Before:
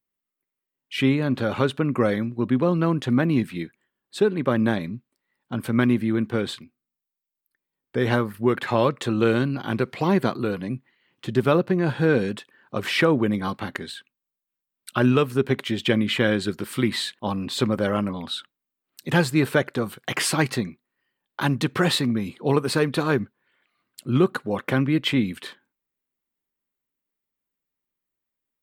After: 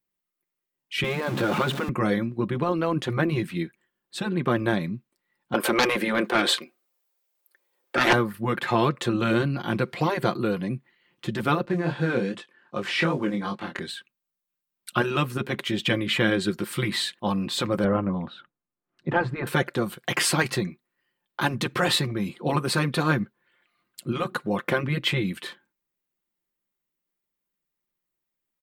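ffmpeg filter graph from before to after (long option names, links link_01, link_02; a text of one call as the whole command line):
ffmpeg -i in.wav -filter_complex "[0:a]asettb=1/sr,asplit=3[link_01][link_02][link_03];[link_01]atrim=end=1.044[link_04];[link_02]atrim=start=1.04:end=1.89,asetpts=PTS-STARTPTS,afade=type=in:duration=0.004:curve=qsin,afade=type=out:start_time=0.846:duration=0.004:curve=qsin,aeval=exprs='val(0)+0.5*0.0398*sgn(val(0))':channel_layout=same,highpass=frequency=160:width=0.5412,highpass=frequency=160:width=1.3066,bass=frequency=250:gain=9,treble=frequency=4000:gain=-5[link_05];[link_03]atrim=start=1.886[link_06];[link_04][link_05]acrossfade=duration=0.004:curve1=hsin:curve2=qsin[link_07];[link_07][link_06]acrossfade=duration=0.004:curve1=qsin:curve2=hsin,asettb=1/sr,asplit=3[link_08][link_09][link_10];[link_08]atrim=end=5.544[link_11];[link_09]atrim=start=5.54:end=8.13,asetpts=PTS-STARTPTS,afade=type=in:duration=0.004:curve=qsin,afade=type=out:start_time=2.586:duration=0.004:curve=qsin,highpass=frequency=500:width_type=q:width=2,aeval=exprs='0.299*sin(PI/2*2.24*val(0)/0.299)':channel_layout=same[link_12];[link_10]atrim=start=8.126[link_13];[link_11][link_12]acrossfade=duration=0.004:curve1=hsin:curve2=qsin[link_14];[link_14][link_13]acrossfade=duration=0.004:curve1=qsin:curve2=hsin,asettb=1/sr,asplit=3[link_15][link_16][link_17];[link_15]atrim=end=11.654[link_18];[link_16]atrim=start=11.65:end=13.79,asetpts=PTS-STARTPTS,afade=type=in:duration=0.004:curve=qsin,afade=type=out:start_time=2.136:duration=0.004:curve=qsin,acrusher=bits=9:mode=log:mix=0:aa=0.000001,highpass=140,lowpass=7800,flanger=delay=20:depth=5.6:speed=2.6[link_19];[link_17]atrim=start=13.786[link_20];[link_18][link_19]acrossfade=duration=0.004:curve1=hsin:curve2=qsin[link_21];[link_21][link_20]acrossfade=duration=0.004:curve1=qsin:curve2=hsin,asettb=1/sr,asplit=3[link_22][link_23][link_24];[link_22]atrim=end=17.844[link_25];[link_23]atrim=start=17.84:end=19.47,asetpts=PTS-STARTPTS,afade=type=in:duration=0.004:curve=qsin,afade=type=out:start_time=1.626:duration=0.004:curve=qsin,lowpass=1500,lowshelf=frequency=120:gain=8[link_26];[link_24]atrim=start=19.466[link_27];[link_25][link_26]acrossfade=duration=0.004:curve1=hsin:curve2=qsin[link_28];[link_28][link_27]acrossfade=duration=0.004:curve1=qsin:curve2=hsin,afftfilt=real='re*lt(hypot(re,im),0.708)':imag='im*lt(hypot(re,im),0.708)':win_size=1024:overlap=0.75,aecho=1:1:5.7:0.41" out.wav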